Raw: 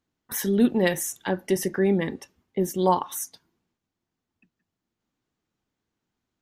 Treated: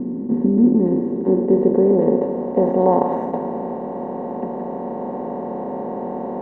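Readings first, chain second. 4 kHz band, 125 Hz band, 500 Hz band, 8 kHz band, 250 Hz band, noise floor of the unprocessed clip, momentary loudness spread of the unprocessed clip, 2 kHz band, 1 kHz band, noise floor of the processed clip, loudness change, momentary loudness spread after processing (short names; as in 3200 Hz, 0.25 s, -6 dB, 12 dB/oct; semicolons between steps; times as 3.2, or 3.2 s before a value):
under -20 dB, +5.5 dB, +9.5 dB, under -40 dB, +9.0 dB, -85 dBFS, 12 LU, under -10 dB, +6.5 dB, -28 dBFS, +5.0 dB, 12 LU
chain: per-bin compression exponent 0.2; low-pass sweep 280 Hz -> 680 Hz, 0.6–2.95; gain -3 dB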